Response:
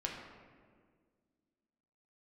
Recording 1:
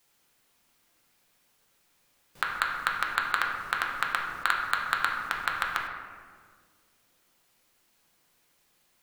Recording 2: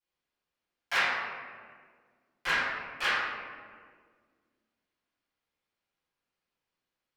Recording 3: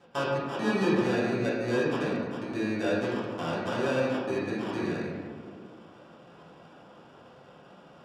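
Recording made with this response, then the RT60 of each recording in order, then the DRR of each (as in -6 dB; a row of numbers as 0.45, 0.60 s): 1; 1.8, 1.8, 1.8 s; -1.0, -17.5, -9.0 dB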